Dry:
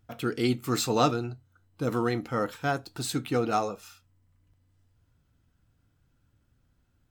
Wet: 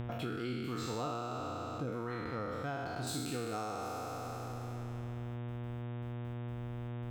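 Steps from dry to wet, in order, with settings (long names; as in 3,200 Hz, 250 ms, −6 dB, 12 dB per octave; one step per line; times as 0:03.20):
peak hold with a decay on every bin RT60 2.25 s
low-shelf EQ 81 Hz +11 dB
noise gate with hold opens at −50 dBFS
high-shelf EQ 5,300 Hz −11.5 dB, from 0:03.07 +2 dB
hum with harmonics 120 Hz, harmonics 31, −43 dBFS −8 dB per octave
downward compressor 5 to 1, threshold −48 dBFS, peak gain reduction 28 dB
level +8.5 dB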